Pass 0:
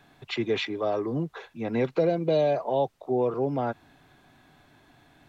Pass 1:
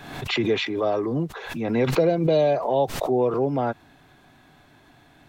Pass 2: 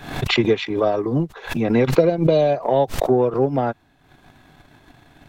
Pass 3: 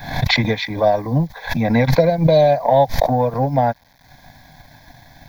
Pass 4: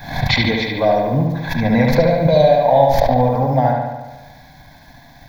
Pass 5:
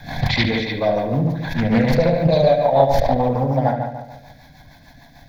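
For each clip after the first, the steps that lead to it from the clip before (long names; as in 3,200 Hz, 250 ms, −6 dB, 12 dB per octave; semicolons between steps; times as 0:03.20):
background raised ahead of every attack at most 59 dB per second; level +3.5 dB
low-shelf EQ 75 Hz +7.5 dB; transient designer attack +10 dB, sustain −9 dB; in parallel at 0 dB: brickwall limiter −11.5 dBFS, peak gain reduction 11 dB; on the sum: level −3.5 dB
bit reduction 9 bits; phaser with its sweep stopped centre 1,900 Hz, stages 8; level +7 dB
surface crackle 48 per second −43 dBFS; bucket-brigade delay 72 ms, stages 2,048, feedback 65%, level −3 dB; level −1 dB
hum removal 61.2 Hz, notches 39; rotating-speaker cabinet horn 6.7 Hz; highs frequency-modulated by the lows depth 0.28 ms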